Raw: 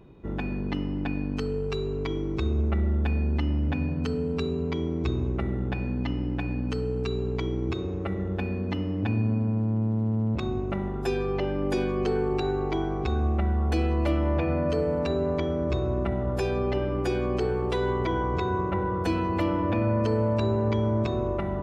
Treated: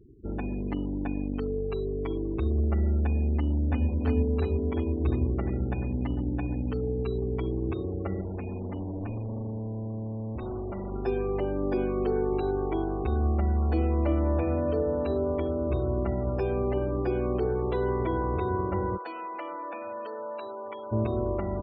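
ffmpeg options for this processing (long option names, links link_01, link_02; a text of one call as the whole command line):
ffmpeg -i in.wav -filter_complex "[0:a]asplit=2[link_01][link_02];[link_02]afade=type=in:start_time=3.37:duration=0.01,afade=type=out:start_time=3.87:duration=0.01,aecho=0:1:350|700|1050|1400|1750|2100|2450|2800|3150|3500|3850|4200:0.794328|0.635463|0.50837|0.406696|0.325357|0.260285|0.208228|0.166583|0.133266|0.106613|0.0852903|0.0682323[link_03];[link_01][link_03]amix=inputs=2:normalize=0,asettb=1/sr,asplit=3[link_04][link_05][link_06];[link_04]atrim=end=8.214[link_07];[link_05]atrim=start=8.21:end=10.92,asetpts=PTS-STARTPTS,afade=type=in:duration=0.004:curve=qsin,afade=type=out:start_time=2.706:duration=0.004:curve=qsin,volume=30.5dB,asoftclip=hard,volume=-30.5dB[link_08];[link_06]atrim=start=10.916[link_09];[link_07][link_08]acrossfade=duration=0.004:curve1=hsin:curve2=qsin[link_10];[link_10][link_09]acrossfade=duration=0.004:curve1=qsin:curve2=hsin,asplit=3[link_11][link_12][link_13];[link_11]afade=type=out:start_time=18.96:duration=0.02[link_14];[link_12]highpass=840,afade=type=in:start_time=18.96:duration=0.02,afade=type=out:start_time=20.91:duration=0.02[link_15];[link_13]afade=type=in:start_time=20.91:duration=0.02[link_16];[link_14][link_15][link_16]amix=inputs=3:normalize=0,lowpass=frequency=1100:poles=1,equalizer=frequency=160:width=6.2:gain=-14,afftfilt=real='re*gte(hypot(re,im),0.00794)':imag='im*gte(hypot(re,im),0.00794)':win_size=1024:overlap=0.75" out.wav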